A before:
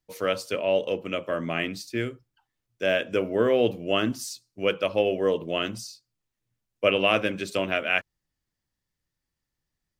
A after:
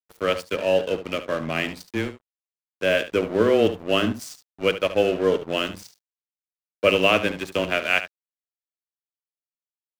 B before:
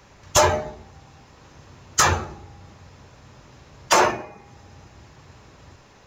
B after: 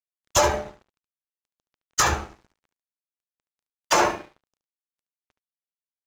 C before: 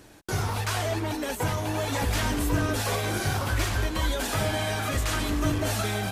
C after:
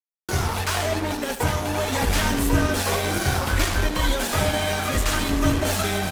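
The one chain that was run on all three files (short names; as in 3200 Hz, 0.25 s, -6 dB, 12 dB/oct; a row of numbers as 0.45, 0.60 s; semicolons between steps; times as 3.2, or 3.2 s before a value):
frequency shift -13 Hz; crossover distortion -37 dBFS; echo 72 ms -12.5 dB; match loudness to -23 LUFS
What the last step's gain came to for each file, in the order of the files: +4.0, -2.5, +7.0 dB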